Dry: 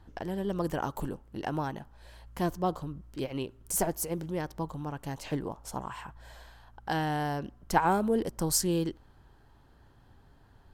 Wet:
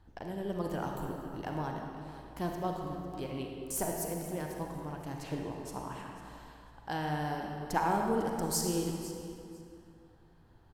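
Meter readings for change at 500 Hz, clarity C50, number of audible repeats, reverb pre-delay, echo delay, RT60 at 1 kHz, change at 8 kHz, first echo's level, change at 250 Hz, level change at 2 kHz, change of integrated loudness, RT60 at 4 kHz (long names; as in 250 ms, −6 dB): −3.0 dB, 1.5 dB, 2, 36 ms, 500 ms, 2.5 s, −4.5 dB, −15.5 dB, −3.5 dB, −4.0 dB, −4.0 dB, 2.0 s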